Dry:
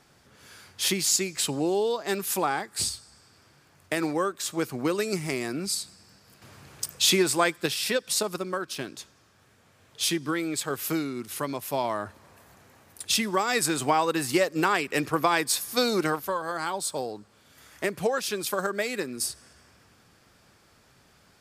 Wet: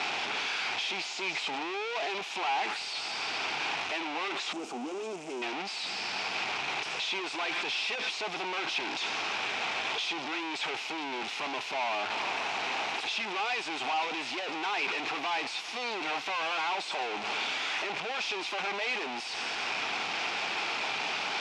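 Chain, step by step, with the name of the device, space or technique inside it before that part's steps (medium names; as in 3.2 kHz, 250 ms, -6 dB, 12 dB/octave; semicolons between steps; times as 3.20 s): home computer beeper (one-bit comparator; cabinet simulation 530–4700 Hz, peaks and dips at 540 Hz -9 dB, 800 Hz +5 dB, 1.2 kHz -4 dB, 1.7 kHz -6 dB, 2.5 kHz +7 dB, 4.5 kHz -4 dB); 4.53–5.42 s: graphic EQ 125/250/1000/2000/4000/8000 Hz -11/+9/-4/-11/-11/+7 dB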